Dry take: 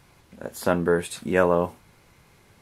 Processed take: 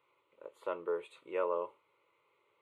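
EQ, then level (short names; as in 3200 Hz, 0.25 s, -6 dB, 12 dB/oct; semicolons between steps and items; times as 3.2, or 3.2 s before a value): HPF 480 Hz 12 dB/oct; tape spacing loss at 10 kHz 24 dB; fixed phaser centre 1100 Hz, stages 8; -7.5 dB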